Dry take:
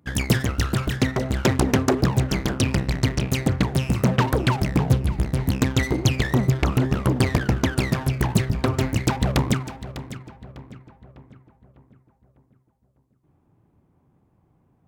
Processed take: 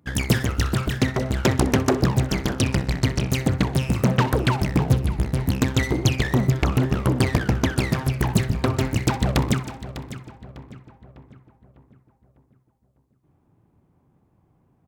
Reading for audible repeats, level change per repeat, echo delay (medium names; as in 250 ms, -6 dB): 3, -7.0 dB, 63 ms